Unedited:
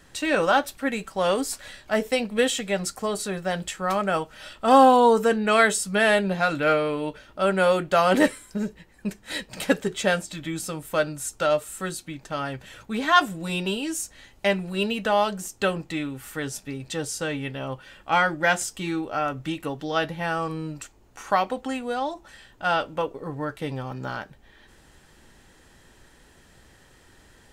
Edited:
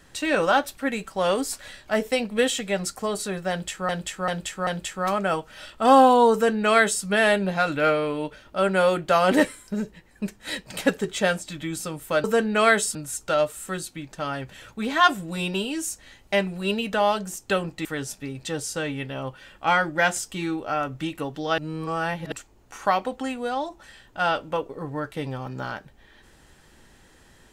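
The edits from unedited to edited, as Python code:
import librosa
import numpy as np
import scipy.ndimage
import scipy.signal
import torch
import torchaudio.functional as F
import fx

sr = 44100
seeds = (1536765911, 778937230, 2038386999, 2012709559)

y = fx.edit(x, sr, fx.repeat(start_s=3.5, length_s=0.39, count=4),
    fx.duplicate(start_s=5.16, length_s=0.71, to_s=11.07),
    fx.cut(start_s=15.97, length_s=0.33),
    fx.reverse_span(start_s=20.03, length_s=0.74), tone=tone)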